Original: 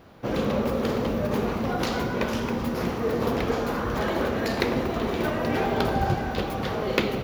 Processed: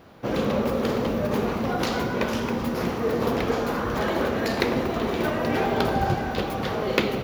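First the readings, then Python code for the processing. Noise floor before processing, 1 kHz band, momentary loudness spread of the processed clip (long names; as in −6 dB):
−30 dBFS, +1.5 dB, 3 LU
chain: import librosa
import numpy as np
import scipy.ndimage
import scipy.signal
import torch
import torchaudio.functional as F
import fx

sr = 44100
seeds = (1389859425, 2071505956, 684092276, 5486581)

y = fx.low_shelf(x, sr, hz=77.0, db=-5.5)
y = F.gain(torch.from_numpy(y), 1.5).numpy()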